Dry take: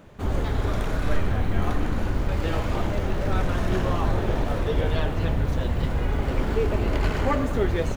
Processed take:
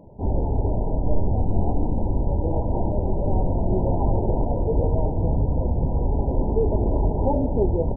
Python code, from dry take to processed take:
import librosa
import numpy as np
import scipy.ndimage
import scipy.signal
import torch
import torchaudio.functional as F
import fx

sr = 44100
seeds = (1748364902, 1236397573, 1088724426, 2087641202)

y = fx.brickwall_lowpass(x, sr, high_hz=1000.0)
y = y * librosa.db_to_amplitude(2.5)